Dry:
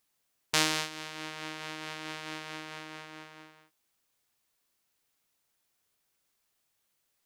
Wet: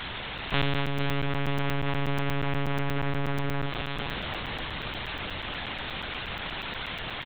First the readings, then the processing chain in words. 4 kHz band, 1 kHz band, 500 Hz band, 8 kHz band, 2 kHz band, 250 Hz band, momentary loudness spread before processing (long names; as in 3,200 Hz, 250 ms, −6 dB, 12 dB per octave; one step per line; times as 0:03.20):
+3.5 dB, +8.5 dB, +11.5 dB, below −15 dB, +7.0 dB, +11.5 dB, 20 LU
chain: converter with a step at zero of −22 dBFS
echo with shifted repeats 464 ms, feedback 61%, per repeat −150 Hz, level −8 dB
one-pitch LPC vocoder at 8 kHz 140 Hz
regular buffer underruns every 0.12 s, samples 256, zero, from 0:00.38